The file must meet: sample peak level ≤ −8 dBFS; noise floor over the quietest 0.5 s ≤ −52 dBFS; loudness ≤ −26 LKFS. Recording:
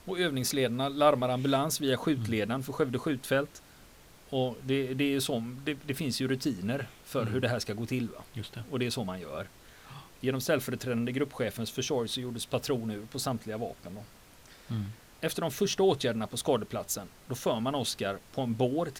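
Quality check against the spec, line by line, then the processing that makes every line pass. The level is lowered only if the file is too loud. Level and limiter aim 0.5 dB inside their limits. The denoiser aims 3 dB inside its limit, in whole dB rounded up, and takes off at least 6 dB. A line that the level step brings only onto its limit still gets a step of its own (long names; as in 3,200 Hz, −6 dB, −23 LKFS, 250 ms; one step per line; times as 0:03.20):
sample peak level −9.5 dBFS: in spec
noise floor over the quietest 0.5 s −55 dBFS: in spec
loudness −31.5 LKFS: in spec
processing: no processing needed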